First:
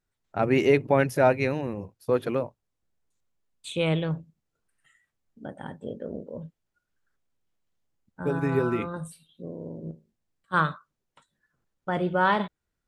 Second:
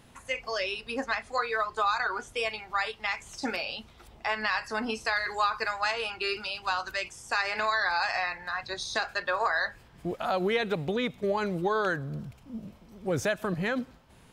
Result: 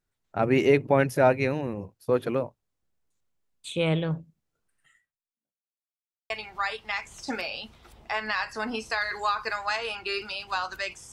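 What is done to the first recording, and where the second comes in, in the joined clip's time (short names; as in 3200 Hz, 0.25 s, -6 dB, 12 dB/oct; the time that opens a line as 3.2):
first
4.98–5.8 fade out exponential
5.8–6.3 mute
6.3 switch to second from 2.45 s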